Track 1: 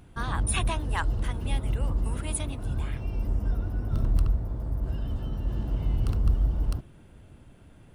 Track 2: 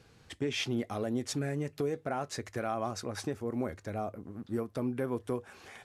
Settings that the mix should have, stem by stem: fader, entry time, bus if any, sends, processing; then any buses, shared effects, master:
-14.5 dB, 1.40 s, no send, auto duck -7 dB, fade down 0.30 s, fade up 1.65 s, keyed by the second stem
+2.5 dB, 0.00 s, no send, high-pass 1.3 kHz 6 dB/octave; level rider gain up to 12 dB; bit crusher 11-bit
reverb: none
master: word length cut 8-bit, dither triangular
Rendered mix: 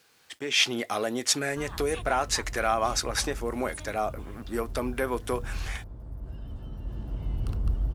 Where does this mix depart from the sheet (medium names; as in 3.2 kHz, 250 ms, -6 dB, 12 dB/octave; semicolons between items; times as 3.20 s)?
stem 1 -14.5 dB -> -4.0 dB; master: missing word length cut 8-bit, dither triangular